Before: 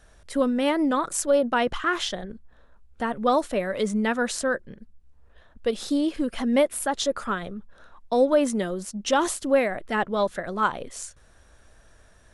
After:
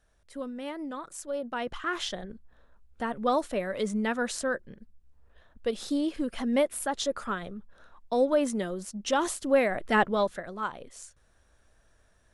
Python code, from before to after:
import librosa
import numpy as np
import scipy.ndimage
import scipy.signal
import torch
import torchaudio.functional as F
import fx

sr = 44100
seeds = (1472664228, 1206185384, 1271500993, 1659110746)

y = fx.gain(x, sr, db=fx.line((1.25, -14.0), (2.08, -4.5), (9.38, -4.5), (9.97, 2.5), (10.56, -9.5)))